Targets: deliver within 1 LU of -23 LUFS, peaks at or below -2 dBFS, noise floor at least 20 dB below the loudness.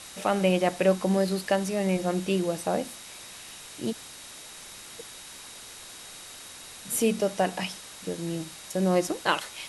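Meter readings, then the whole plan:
steady tone 3.8 kHz; tone level -52 dBFS; noise floor -45 dBFS; noise floor target -48 dBFS; loudness -27.5 LUFS; peak level -8.0 dBFS; loudness target -23.0 LUFS
-> band-stop 3.8 kHz, Q 30; noise reduction 6 dB, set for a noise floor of -45 dBFS; trim +4.5 dB

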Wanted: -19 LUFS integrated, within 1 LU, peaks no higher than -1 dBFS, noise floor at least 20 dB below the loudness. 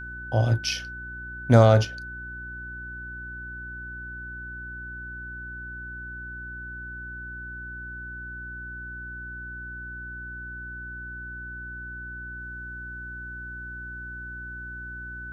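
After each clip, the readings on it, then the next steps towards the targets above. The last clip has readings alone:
hum 60 Hz; highest harmonic 360 Hz; hum level -39 dBFS; steady tone 1.5 kHz; tone level -36 dBFS; loudness -30.5 LUFS; peak level -3.0 dBFS; loudness target -19.0 LUFS
-> de-hum 60 Hz, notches 6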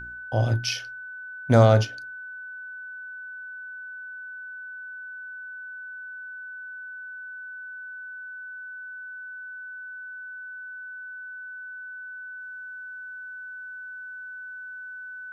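hum not found; steady tone 1.5 kHz; tone level -36 dBFS
-> band-stop 1.5 kHz, Q 30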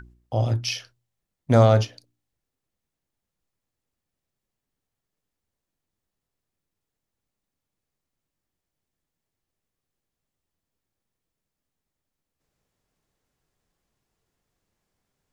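steady tone not found; loudness -21.5 LUFS; peak level -4.5 dBFS; loudness target -19.0 LUFS
-> trim +2.5 dB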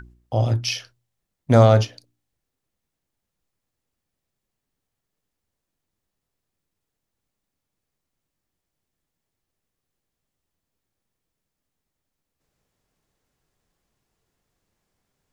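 loudness -19.0 LUFS; peak level -2.0 dBFS; noise floor -83 dBFS

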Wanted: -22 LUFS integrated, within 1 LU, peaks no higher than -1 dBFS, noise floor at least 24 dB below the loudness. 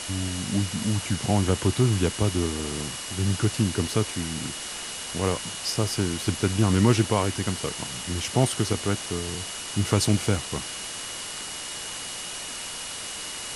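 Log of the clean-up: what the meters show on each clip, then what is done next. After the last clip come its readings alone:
steady tone 2.9 kHz; tone level -41 dBFS; noise floor -35 dBFS; noise floor target -51 dBFS; loudness -26.5 LUFS; peak level -6.0 dBFS; loudness target -22.0 LUFS
-> band-stop 2.9 kHz, Q 30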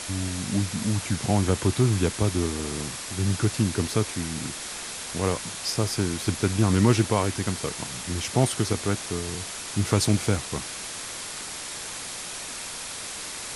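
steady tone not found; noise floor -36 dBFS; noise floor target -51 dBFS
-> noise print and reduce 15 dB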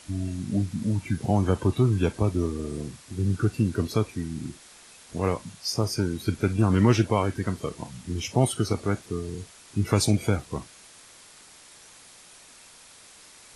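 noise floor -51 dBFS; loudness -26.5 LUFS; peak level -6.5 dBFS; loudness target -22.0 LUFS
-> trim +4.5 dB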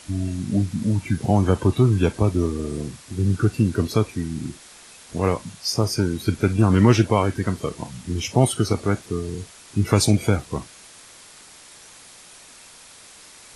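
loudness -22.0 LUFS; peak level -2.0 dBFS; noise floor -46 dBFS

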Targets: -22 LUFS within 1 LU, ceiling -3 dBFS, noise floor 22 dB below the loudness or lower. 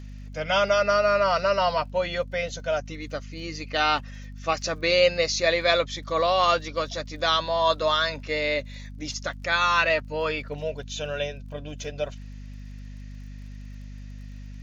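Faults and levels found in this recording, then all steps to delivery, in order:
tick rate 38 per s; hum 50 Hz; highest harmonic 250 Hz; hum level -37 dBFS; loudness -24.5 LUFS; peak level -6.0 dBFS; loudness target -22.0 LUFS
-> de-click; hum notches 50/100/150/200/250 Hz; trim +2.5 dB

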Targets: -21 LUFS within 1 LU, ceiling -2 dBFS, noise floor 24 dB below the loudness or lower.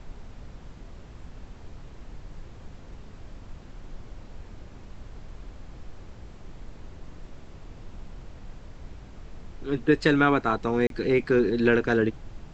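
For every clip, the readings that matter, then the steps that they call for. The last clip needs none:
dropouts 1; longest dropout 32 ms; noise floor -46 dBFS; noise floor target -48 dBFS; loudness -23.5 LUFS; peak level -6.0 dBFS; loudness target -21.0 LUFS
-> interpolate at 10.87 s, 32 ms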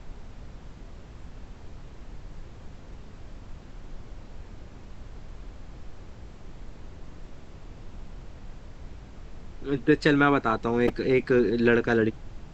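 dropouts 0; noise floor -46 dBFS; noise floor target -48 dBFS
-> noise print and reduce 6 dB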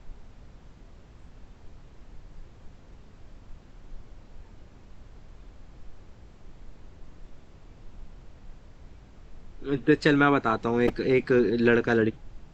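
noise floor -52 dBFS; loudness -23.5 LUFS; peak level -6.0 dBFS; loudness target -21.0 LUFS
-> trim +2.5 dB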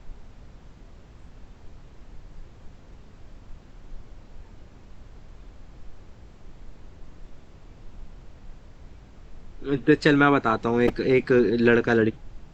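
loudness -21.0 LUFS; peak level -3.5 dBFS; noise floor -49 dBFS

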